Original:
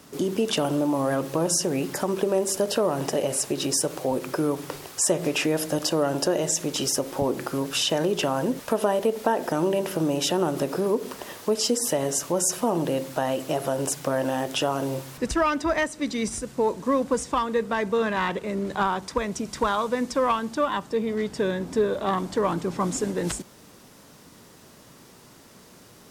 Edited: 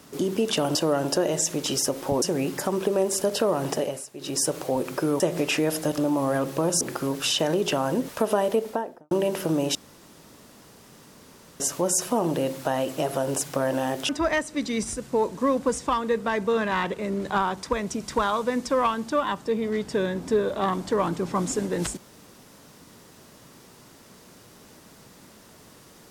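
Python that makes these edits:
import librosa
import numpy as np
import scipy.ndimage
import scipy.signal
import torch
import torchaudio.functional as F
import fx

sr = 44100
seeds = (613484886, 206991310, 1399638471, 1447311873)

y = fx.studio_fade_out(x, sr, start_s=9.02, length_s=0.6)
y = fx.edit(y, sr, fx.swap(start_s=0.75, length_s=0.83, other_s=5.85, other_length_s=1.47),
    fx.fade_down_up(start_s=3.12, length_s=0.68, db=-16.5, fade_s=0.3),
    fx.cut(start_s=4.56, length_s=0.51),
    fx.room_tone_fill(start_s=10.26, length_s=1.85),
    fx.cut(start_s=14.6, length_s=0.94), tone=tone)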